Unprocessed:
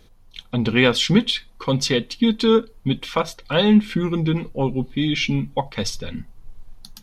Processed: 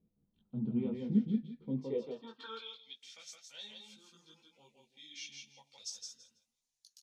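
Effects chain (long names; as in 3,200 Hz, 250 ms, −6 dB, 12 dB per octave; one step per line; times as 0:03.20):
0:02.12–0:03.13: meter weighting curve A
repeating echo 165 ms, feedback 19%, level −4 dB
auto-filter notch sine 0.53 Hz 1,000–2,200 Hz
multi-voice chorus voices 4, 0.57 Hz, delay 18 ms, depth 4.9 ms
band-pass filter sweep 200 Hz → 6,500 Hz, 0:01.65–0:03.02
level −8 dB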